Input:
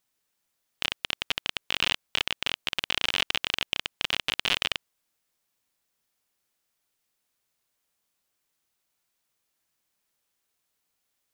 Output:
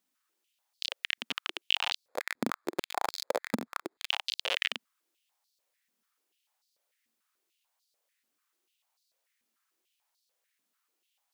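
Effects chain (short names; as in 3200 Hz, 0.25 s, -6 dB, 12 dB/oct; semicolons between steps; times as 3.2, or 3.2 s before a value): limiter -11.5 dBFS, peak gain reduction 7 dB; 2.08–4.09 sample-rate reducer 2900 Hz, jitter 0%; stepped high-pass 6.8 Hz 230–4400 Hz; gain -3.5 dB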